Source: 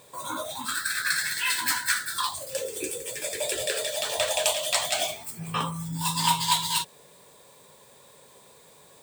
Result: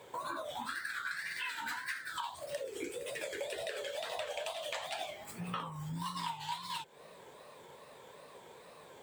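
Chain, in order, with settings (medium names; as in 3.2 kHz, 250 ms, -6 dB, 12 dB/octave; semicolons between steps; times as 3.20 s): tone controls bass -6 dB, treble -14 dB; compression 6:1, threshold -40 dBFS, peak gain reduction 19 dB; wow and flutter 140 cents; trim +2.5 dB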